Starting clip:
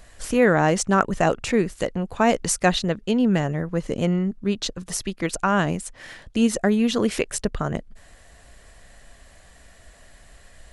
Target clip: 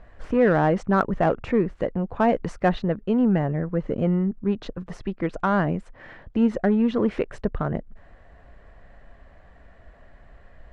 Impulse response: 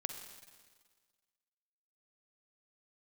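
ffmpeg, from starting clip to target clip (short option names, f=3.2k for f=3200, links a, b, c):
-filter_complex "[0:a]lowpass=1.5k,asplit=2[a][b];[b]asoftclip=type=tanh:threshold=-20dB,volume=-4.5dB[c];[a][c]amix=inputs=2:normalize=0,volume=-3dB"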